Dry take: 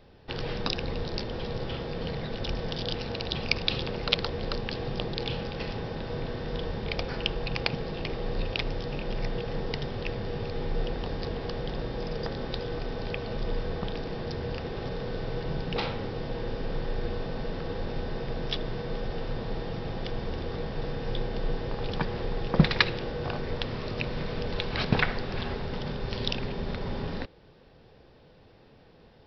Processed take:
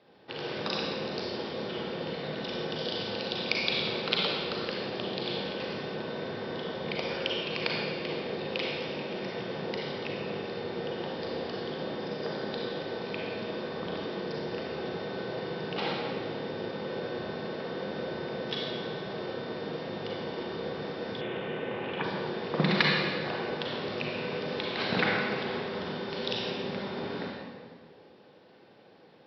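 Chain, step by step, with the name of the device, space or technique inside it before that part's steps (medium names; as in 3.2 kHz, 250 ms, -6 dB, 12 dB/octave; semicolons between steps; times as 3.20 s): supermarket ceiling speaker (band-pass 230–5300 Hz; reverberation RT60 1.7 s, pre-delay 34 ms, DRR -3 dB); 21.21–22.04 s: resonant high shelf 3.6 kHz -10 dB, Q 3; high-pass 65 Hz; trim -3.5 dB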